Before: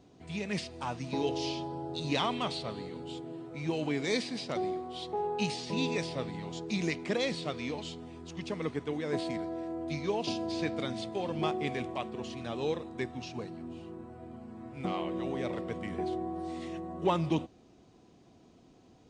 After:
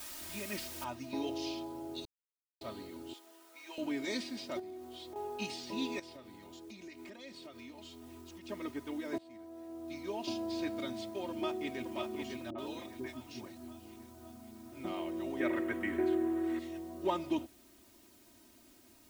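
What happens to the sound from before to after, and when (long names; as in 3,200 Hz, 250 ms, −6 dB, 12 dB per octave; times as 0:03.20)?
0:00.84: noise floor change −41 dB −59 dB
0:02.05–0:02.61: silence
0:03.13–0:03.78: high-pass filter 930 Hz
0:04.59–0:05.16: downward compressor, threshold −38 dBFS
0:05.99–0:08.49: downward compressor, threshold −41 dBFS
0:09.18–0:10.33: fade in, from −22 dB
0:11.30–0:11.81: delay throw 550 ms, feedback 55%, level −4.5 dB
0:12.50–0:14.72: three-band delay without the direct sound lows, mids, highs 50/80 ms, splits 450/2,200 Hz
0:15.40–0:16.59: drawn EQ curve 200 Hz 0 dB, 280 Hz +9 dB, 800 Hz +2 dB, 1,700 Hz +15 dB, 4,900 Hz −5 dB, 7,700 Hz 0 dB
whole clip: comb filter 3.2 ms, depth 87%; level −7.5 dB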